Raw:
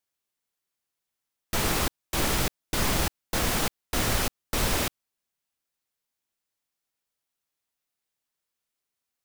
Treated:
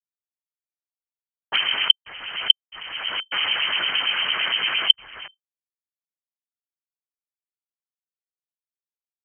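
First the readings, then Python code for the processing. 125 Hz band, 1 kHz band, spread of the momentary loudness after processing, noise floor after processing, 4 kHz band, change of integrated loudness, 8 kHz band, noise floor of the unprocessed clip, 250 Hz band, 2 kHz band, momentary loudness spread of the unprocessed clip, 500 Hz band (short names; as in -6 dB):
under -20 dB, -0.5 dB, 11 LU, under -85 dBFS, +14.0 dB, +6.5 dB, under -30 dB, -85 dBFS, -17.0 dB, +7.5 dB, 4 LU, -10.0 dB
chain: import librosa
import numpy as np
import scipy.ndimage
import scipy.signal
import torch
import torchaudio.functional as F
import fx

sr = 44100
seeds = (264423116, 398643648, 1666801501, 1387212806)

y = fx.reverse_delay(x, sr, ms=329, wet_db=-5.0)
y = fx.high_shelf(y, sr, hz=2100.0, db=-12.0)
y = fx.over_compress(y, sr, threshold_db=-32.0, ratio=-0.5)
y = fx.fold_sine(y, sr, drive_db=18, ceiling_db=-15.0)
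y = fx.highpass(y, sr, hz=64.0, slope=6)
y = fx.schmitt(y, sr, flips_db=-36.5)
y = fx.lpc_monotone(y, sr, seeds[0], pitch_hz=210.0, order=8)
y = fx.harmonic_tremolo(y, sr, hz=8.8, depth_pct=70, crossover_hz=1000.0)
y = fx.freq_invert(y, sr, carrier_hz=3100)
y = fx.peak_eq(y, sr, hz=1400.0, db=10.5, octaves=2.2)
y = fx.env_lowpass(y, sr, base_hz=410.0, full_db=-23.5)
y = fx.band_squash(y, sr, depth_pct=100)
y = y * 10.0 ** (-15.0 / 20.0)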